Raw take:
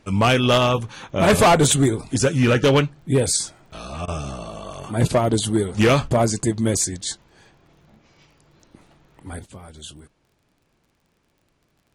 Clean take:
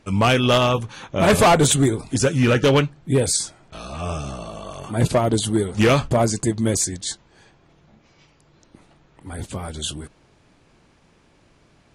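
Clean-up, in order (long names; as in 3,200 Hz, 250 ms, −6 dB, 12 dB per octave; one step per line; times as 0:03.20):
click removal
repair the gap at 0:04.06, 18 ms
level 0 dB, from 0:09.39 +10.5 dB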